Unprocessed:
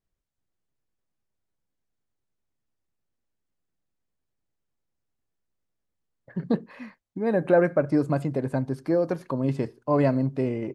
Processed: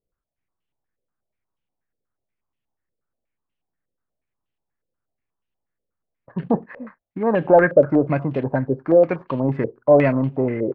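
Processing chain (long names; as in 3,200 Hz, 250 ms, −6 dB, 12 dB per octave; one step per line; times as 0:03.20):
leveller curve on the samples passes 1
low-pass on a step sequencer 8.3 Hz 510–2,900 Hz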